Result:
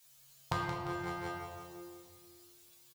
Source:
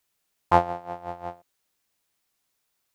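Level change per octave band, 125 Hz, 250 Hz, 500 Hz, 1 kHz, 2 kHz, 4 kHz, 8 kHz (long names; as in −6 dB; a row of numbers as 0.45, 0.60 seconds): −4.5 dB, −5.5 dB, −13.0 dB, −14.0 dB, −2.5 dB, 0.0 dB, can't be measured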